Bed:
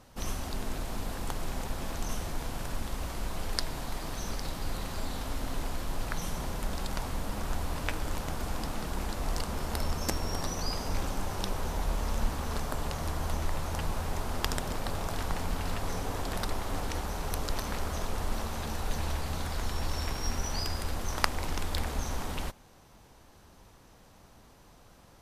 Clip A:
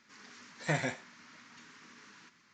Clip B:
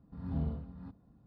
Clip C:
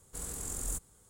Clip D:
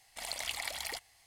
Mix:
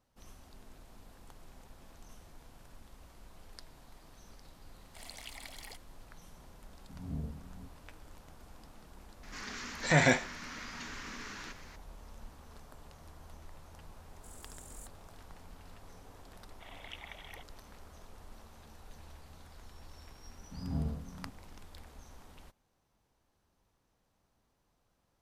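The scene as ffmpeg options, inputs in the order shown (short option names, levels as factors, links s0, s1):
-filter_complex "[4:a]asplit=2[s0][s1];[2:a]asplit=2[s2][s3];[0:a]volume=0.1[s4];[s2]afwtdn=0.00708[s5];[1:a]alimiter=level_in=13.3:limit=0.891:release=50:level=0:latency=1[s6];[s1]aresample=8000,aresample=44100[s7];[s0]atrim=end=1.26,asetpts=PTS-STARTPTS,volume=0.299,afade=t=in:d=0.004:c=hsin,afade=t=out:st=1.256:d=0.004:c=hsin,adelay=4780[s8];[s5]atrim=end=1.26,asetpts=PTS-STARTPTS,volume=0.562,afade=t=in:d=0.004:c=hsin,afade=t=out:st=1.256:d=0.004:c=hsin,adelay=6770[s9];[s6]atrim=end=2.53,asetpts=PTS-STARTPTS,volume=0.251,afade=t=in:d=0.004:c=hsin,afade=t=out:st=2.526:d=0.004:c=hsin,adelay=9230[s10];[3:a]atrim=end=1.09,asetpts=PTS-STARTPTS,volume=0.178,afade=t=in:d=0.004:c=hsin,afade=t=out:st=1.086:d=0.004:c=hsin,adelay=14090[s11];[s7]atrim=end=1.26,asetpts=PTS-STARTPTS,volume=0.355,afade=t=in:d=0.004:c=hsin,afade=t=out:st=1.256:d=0.004:c=hsin,adelay=16440[s12];[s3]atrim=end=1.26,asetpts=PTS-STARTPTS,volume=0.944,afade=t=in:d=0.004:c=hsin,afade=t=out:st=1.256:d=0.004:c=hsin,adelay=20390[s13];[s4][s8][s9][s10][s11][s12][s13]amix=inputs=7:normalize=0"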